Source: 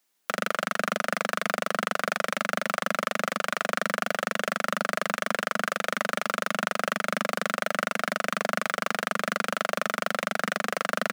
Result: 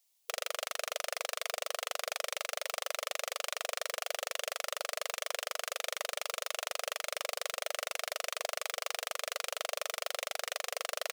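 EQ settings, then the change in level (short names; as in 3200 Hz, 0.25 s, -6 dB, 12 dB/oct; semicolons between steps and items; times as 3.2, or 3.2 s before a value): brick-wall FIR high-pass 460 Hz; tilt shelf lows -4.5 dB; bell 1500 Hz -14 dB 1 oct; -4.0 dB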